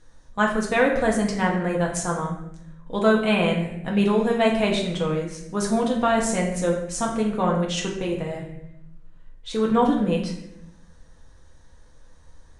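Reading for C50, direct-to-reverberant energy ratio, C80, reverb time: 5.5 dB, -1.5 dB, 8.0 dB, 0.80 s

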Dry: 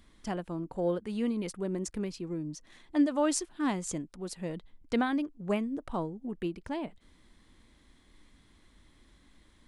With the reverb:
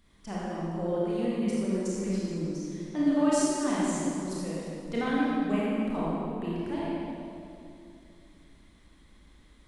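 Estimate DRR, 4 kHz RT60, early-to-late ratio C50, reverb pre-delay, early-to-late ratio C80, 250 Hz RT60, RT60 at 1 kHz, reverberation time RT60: -7.5 dB, 1.9 s, -4.5 dB, 24 ms, -2.5 dB, 3.3 s, 2.4 s, 2.6 s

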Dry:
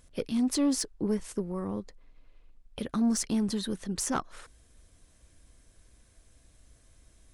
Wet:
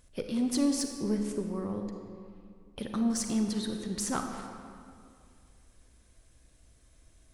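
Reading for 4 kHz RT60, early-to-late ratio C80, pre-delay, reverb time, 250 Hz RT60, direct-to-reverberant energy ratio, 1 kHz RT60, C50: 1.4 s, 6.0 dB, 35 ms, 2.3 s, 2.5 s, 4.0 dB, 2.2 s, 4.5 dB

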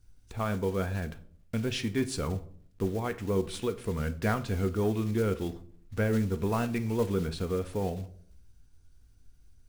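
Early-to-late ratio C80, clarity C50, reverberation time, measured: 20.5 dB, 16.5 dB, 0.60 s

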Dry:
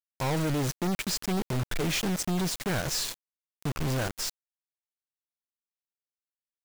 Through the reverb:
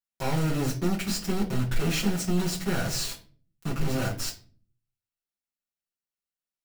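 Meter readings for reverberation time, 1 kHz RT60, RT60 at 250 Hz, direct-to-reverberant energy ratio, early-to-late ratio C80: 0.40 s, 0.35 s, 0.70 s, -5.5 dB, 17.5 dB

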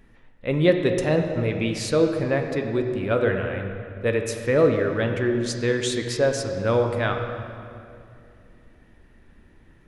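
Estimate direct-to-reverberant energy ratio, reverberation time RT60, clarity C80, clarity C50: 3.5 dB, 2.5 s, 6.0 dB, 5.5 dB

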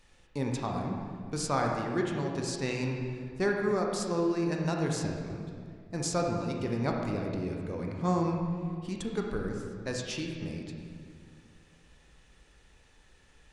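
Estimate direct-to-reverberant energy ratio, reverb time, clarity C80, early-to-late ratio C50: 0.5 dB, 2.1 s, 3.5 dB, 2.0 dB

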